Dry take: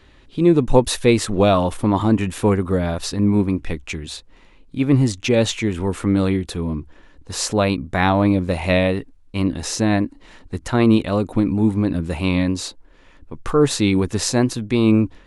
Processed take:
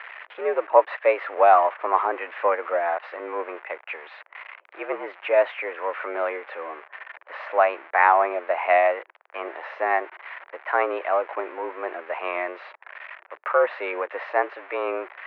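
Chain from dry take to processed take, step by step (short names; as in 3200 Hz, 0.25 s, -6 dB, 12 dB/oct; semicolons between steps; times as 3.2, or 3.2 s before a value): switching spikes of -16 dBFS; mistuned SSB +77 Hz 520–2100 Hz; gain +3 dB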